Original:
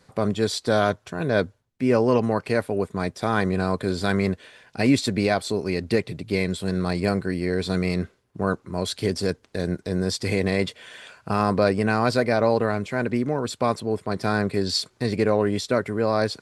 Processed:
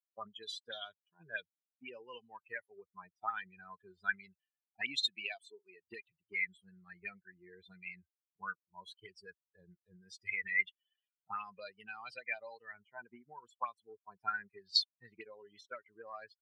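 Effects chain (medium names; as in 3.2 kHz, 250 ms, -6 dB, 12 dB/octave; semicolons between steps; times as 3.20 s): expander on every frequency bin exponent 3; 5.05–5.87 s: high-pass 150 Hz -> 490 Hz 12 dB/octave; auto-wah 700–3800 Hz, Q 6, up, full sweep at -25 dBFS; trim +7.5 dB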